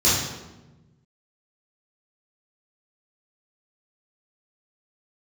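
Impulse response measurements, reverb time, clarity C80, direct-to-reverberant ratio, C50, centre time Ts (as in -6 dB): 1.1 s, 4.0 dB, -11.0 dB, 0.0 dB, 74 ms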